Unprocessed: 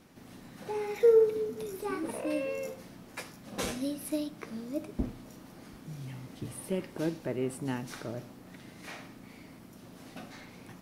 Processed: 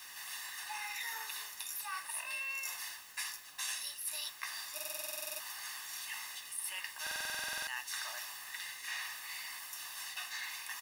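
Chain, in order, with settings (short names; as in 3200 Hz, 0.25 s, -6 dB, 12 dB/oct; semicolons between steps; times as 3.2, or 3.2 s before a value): HPF 1200 Hz 24 dB/oct; high shelf 5000 Hz +5.5 dB; comb 1.1 ms, depth 97%; reverse; compressor 5:1, threshold -50 dBFS, peak gain reduction 18.5 dB; reverse; added noise white -72 dBFS; stuck buffer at 4.75/7.02, samples 2048, times 13; gain +11 dB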